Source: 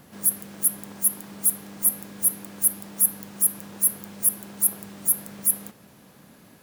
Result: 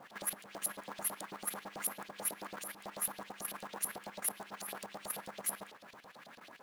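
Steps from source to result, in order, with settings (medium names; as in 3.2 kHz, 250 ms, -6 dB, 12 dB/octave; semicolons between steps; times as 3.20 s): LFO band-pass saw up 9.1 Hz 580–4400 Hz; short-mantissa float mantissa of 2-bit; level held to a coarse grid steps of 11 dB; trim +11.5 dB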